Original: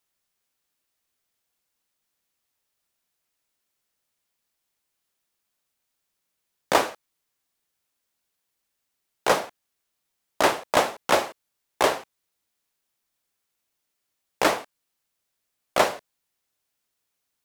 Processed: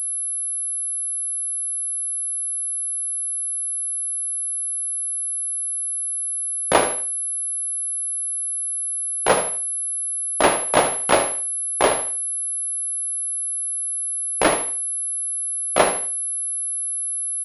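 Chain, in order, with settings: in parallel at -11.5 dB: sample-rate reducer 1.8 kHz; on the sum: feedback delay 76 ms, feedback 29%, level -10.5 dB; class-D stage that switches slowly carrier 11 kHz; trim +2.5 dB

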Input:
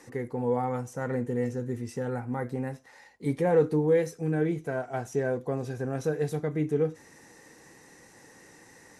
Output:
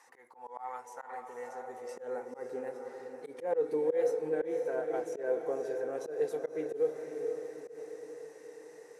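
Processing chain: echo that smears into a reverb 513 ms, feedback 57%, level -7.5 dB; high-pass sweep 900 Hz -> 450 Hz, 1.18–2.39 s; slow attack 129 ms; trim -8.5 dB

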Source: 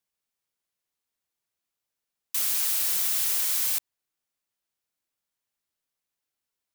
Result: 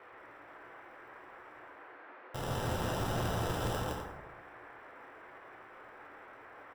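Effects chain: median filter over 41 samples; graphic EQ 125/250/1000/2000/4000/8000 Hz +9/-11/+8/-12/+8/+6 dB; reverse; upward compressor, threshold -58 dBFS; reverse; sample-and-hold 20×; loudspeakers at several distances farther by 56 m -2 dB, 87 m -10 dB; band noise 300–1900 Hz -59 dBFS; plate-style reverb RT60 1.3 s, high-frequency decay 0.4×, DRR 1 dB; trim +3.5 dB

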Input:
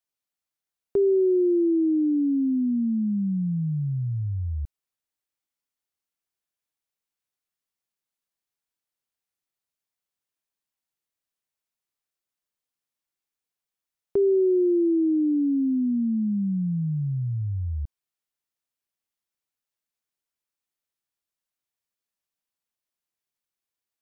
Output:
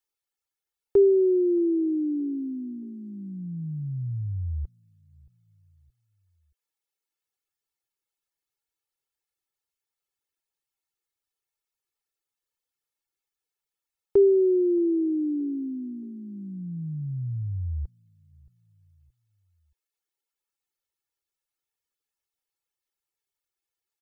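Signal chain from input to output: feedback delay 624 ms, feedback 42%, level -24 dB; reverb removal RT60 0.98 s; comb 2.3 ms, depth 70%

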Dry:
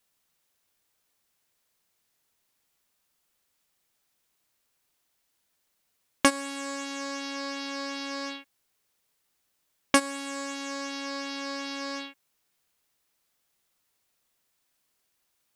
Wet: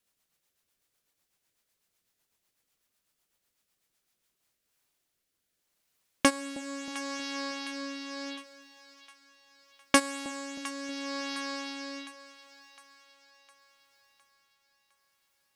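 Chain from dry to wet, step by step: rotary cabinet horn 8 Hz, later 0.75 Hz, at 3.95 s; two-band feedback delay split 780 Hz, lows 316 ms, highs 709 ms, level -15.5 dB

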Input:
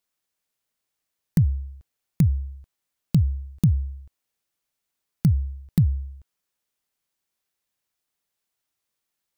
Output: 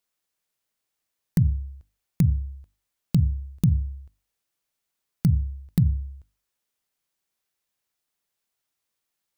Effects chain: hum notches 50/100/150/200/250/300 Hz

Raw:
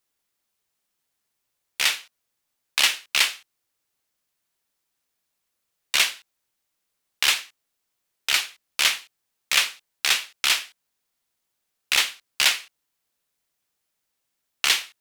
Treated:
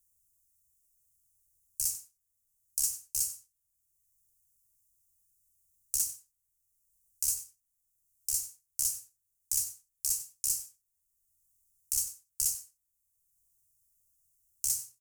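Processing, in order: inverse Chebyshev band-stop 260–3800 Hz, stop band 40 dB; bass shelf 100 Hz +5.5 dB; hum notches 60/120 Hz; comb 2.6 ms, depth 35%; waveshaping leveller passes 1; delay 94 ms -16 dB; three bands compressed up and down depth 40%; trim -3 dB

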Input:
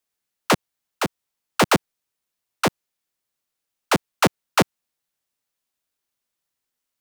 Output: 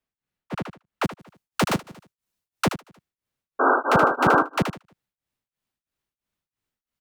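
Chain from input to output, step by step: tone controls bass +10 dB, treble -13 dB, from 1.03 s treble 0 dB, from 2.65 s treble -7 dB; compression 2.5:1, threshold -21 dBFS, peak gain reduction 9 dB; 3.59–4.43 s: painted sound noise 240–1600 Hz -17 dBFS; feedback delay 77 ms, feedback 36%, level -8.5 dB; tremolo of two beating tones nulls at 3 Hz

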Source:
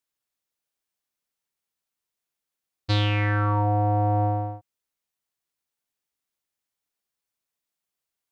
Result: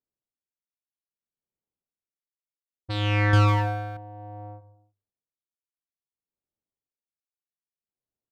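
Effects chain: hum notches 50/100/150/200/250/300 Hz; on a send: feedback delay 156 ms, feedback 32%, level -23 dB; on the sum: level-controlled noise filter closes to 480 Hz, open at -20.5 dBFS; in parallel at -4 dB: saturation -20 dBFS, distortion -12 dB; 3.33–3.97 s: on the sum: waveshaping leveller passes 3; logarithmic tremolo 0.61 Hz, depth 22 dB

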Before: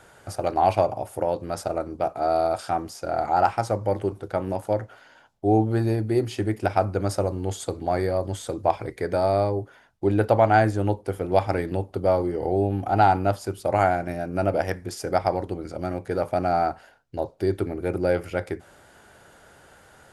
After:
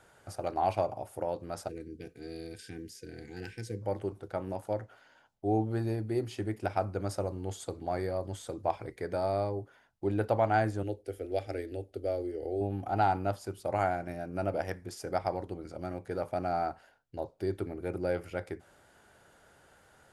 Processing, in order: 1.69–3.82 s: time-frequency box 500–1500 Hz -29 dB; 10.83–12.61 s: static phaser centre 410 Hz, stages 4; trim -9 dB

